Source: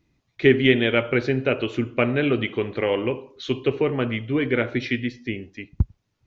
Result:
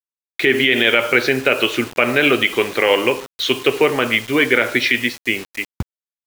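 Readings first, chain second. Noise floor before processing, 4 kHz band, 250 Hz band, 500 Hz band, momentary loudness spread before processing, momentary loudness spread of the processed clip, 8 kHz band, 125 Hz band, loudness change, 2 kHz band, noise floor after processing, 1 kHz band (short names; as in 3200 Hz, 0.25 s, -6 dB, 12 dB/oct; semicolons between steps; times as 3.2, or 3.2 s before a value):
-73 dBFS, +12.0 dB, +1.5 dB, +4.0 dB, 11 LU, 10 LU, n/a, -5.0 dB, +6.5 dB, +10.5 dB, under -85 dBFS, +9.5 dB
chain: HPF 1100 Hz 6 dB/oct; bit-crush 8-bit; maximiser +16.5 dB; gain -1 dB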